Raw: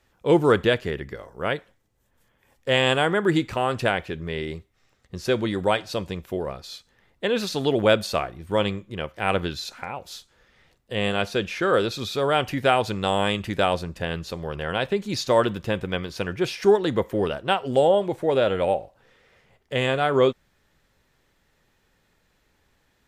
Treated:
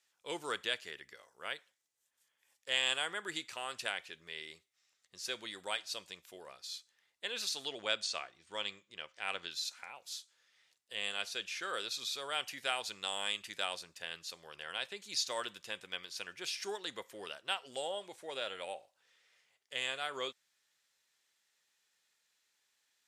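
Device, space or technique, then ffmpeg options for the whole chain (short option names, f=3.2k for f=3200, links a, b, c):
piezo pickup straight into a mixer: -filter_complex "[0:a]asettb=1/sr,asplit=3[a][b][c];[a]atrim=end=7.684[d];[b]atrim=start=7.68:end=9.51,asetpts=PTS-STARTPTS,afade=t=in:d=0.004:c=qsin,afade=t=out:st=1.826:d=0.004:c=qsin,lowpass=f=7.8k:w=0.5412,lowpass=f=7.8k:w=1.3066[e];[c]atrim=start=9.506[f];[d][e]acrossfade=d=0.004:c1=hsin:c2=qsin[g];[g][f]acrossfade=d=0.004:c1=qsin:c2=hsin,lowpass=8.3k,aderivative"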